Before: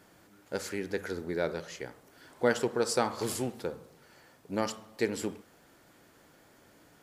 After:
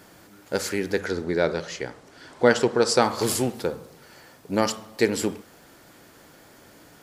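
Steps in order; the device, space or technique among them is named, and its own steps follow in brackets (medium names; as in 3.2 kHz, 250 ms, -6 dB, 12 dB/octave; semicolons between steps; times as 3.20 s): presence and air boost (peaking EQ 4.8 kHz +2 dB; treble shelf 11 kHz +3.5 dB); 0.98–3.02 s: low-pass 7.5 kHz 12 dB/octave; trim +8.5 dB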